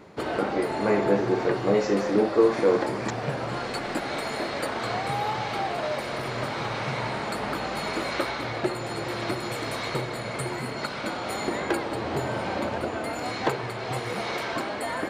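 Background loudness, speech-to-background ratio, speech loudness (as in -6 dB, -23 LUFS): -30.0 LUFS, 5.5 dB, -24.5 LUFS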